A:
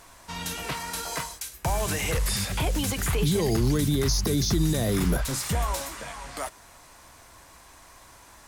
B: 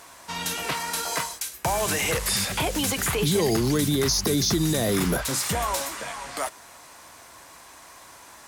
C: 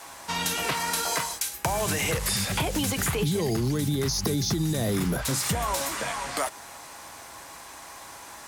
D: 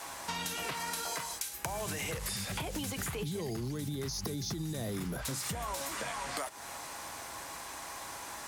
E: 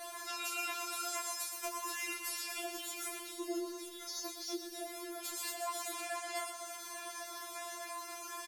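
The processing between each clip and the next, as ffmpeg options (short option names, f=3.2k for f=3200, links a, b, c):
-af "highpass=f=240:p=1,volume=4.5dB"
-af "adynamicequalizer=threshold=0.0126:dfrequency=120:dqfactor=0.73:tfrequency=120:tqfactor=0.73:attack=5:release=100:ratio=0.375:range=3.5:mode=boostabove:tftype=bell,acompressor=threshold=-27dB:ratio=6,aeval=exprs='val(0)+0.00158*sin(2*PI*820*n/s)':c=same,volume=3.5dB"
-af "acompressor=threshold=-35dB:ratio=5"
-filter_complex "[0:a]asplit=2[a][b];[b]adelay=25,volume=-5dB[c];[a][c]amix=inputs=2:normalize=0,aecho=1:1:122|244|366|488|610|732|854|976:0.376|0.226|0.135|0.0812|0.0487|0.0292|0.0175|0.0105,afftfilt=real='re*4*eq(mod(b,16),0)':imag='im*4*eq(mod(b,16),0)':win_size=2048:overlap=0.75,volume=-1.5dB"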